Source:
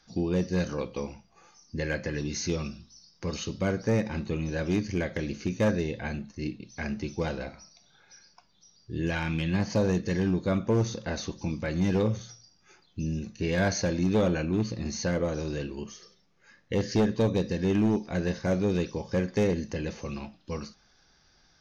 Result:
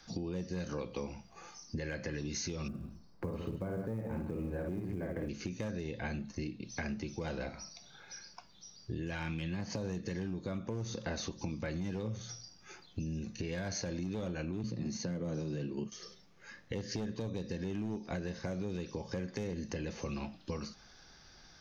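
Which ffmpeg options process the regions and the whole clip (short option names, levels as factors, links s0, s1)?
-filter_complex "[0:a]asettb=1/sr,asplit=3[s0][s1][s2];[s0]atrim=end=2.684[s3];[s1]atrim=start=2.68:end=5.29,asetpts=PTS-STARTPTS,afade=t=in:d=0.004:c=qsin,afade=t=out:st=2.606:d=0.004:c=qsin,lowpass=1200,aecho=1:1:54|151:0.596|0.299,atrim=end_sample=115101,acrusher=bits=9:mode=log:mix=0:aa=0.000001[s4];[s2]atrim=start=5.286[s5];[s3][s4]acrossfade=d=0.004:c1=hsin:c2=qsin[s6];[s6][s5]acrossfade=d=0.004:c1=qsin:c2=hsin,asettb=1/sr,asplit=3[s7][s8][s9];[s7]atrim=end=14.634[s10];[s8]atrim=start=14.63:end=15.92,asetpts=PTS-STARTPTS,afade=t=in:d=0.004:c=qsin,afade=t=out:st=1.286:d=0.004:c=qsin,highpass=f=120:w=0.5412,highpass=f=120:w=1.3066,lowshelf=f=360:g=11,agate=range=0.0224:threshold=0.0282:ratio=3:release=100:detection=peak[s11];[s9]atrim=start=15.916[s12];[s10][s11]acrossfade=d=0.004:c1=hsin:c2=qsin[s13];[s13][s12]acrossfade=d=0.004:c1=qsin:c2=hsin,acrossover=split=200|3000[s14][s15][s16];[s15]acompressor=threshold=0.0501:ratio=6[s17];[s14][s17][s16]amix=inputs=3:normalize=0,alimiter=level_in=1.26:limit=0.0631:level=0:latency=1:release=282,volume=0.794,acompressor=threshold=0.00794:ratio=3,volume=1.78"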